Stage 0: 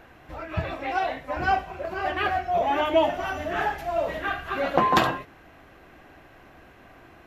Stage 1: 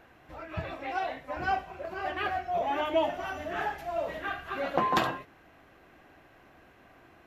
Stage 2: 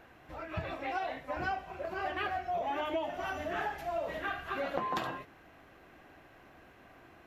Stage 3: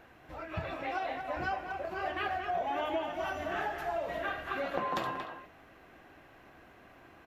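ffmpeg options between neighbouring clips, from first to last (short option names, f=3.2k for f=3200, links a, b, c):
-af "lowshelf=f=65:g=-6.5,volume=-6dB"
-af "acompressor=threshold=-31dB:ratio=6"
-filter_complex "[0:a]asplit=2[a][b];[b]adelay=230,highpass=300,lowpass=3.4k,asoftclip=type=hard:threshold=-26.5dB,volume=-6dB[c];[a][c]amix=inputs=2:normalize=0"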